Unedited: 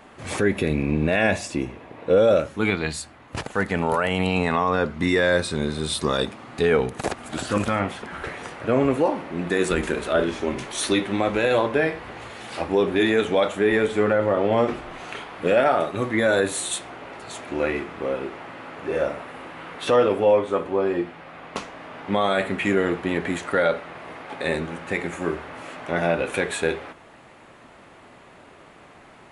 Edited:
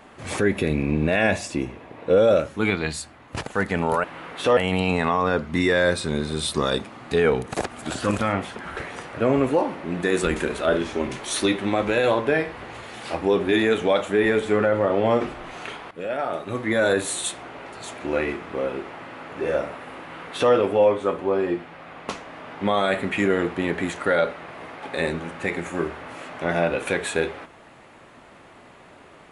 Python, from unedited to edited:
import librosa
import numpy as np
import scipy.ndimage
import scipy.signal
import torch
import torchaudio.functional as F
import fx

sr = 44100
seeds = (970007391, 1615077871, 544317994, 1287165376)

y = fx.edit(x, sr, fx.fade_in_from(start_s=15.38, length_s=0.98, floor_db=-16.0),
    fx.duplicate(start_s=19.47, length_s=0.53, to_s=4.04), tone=tone)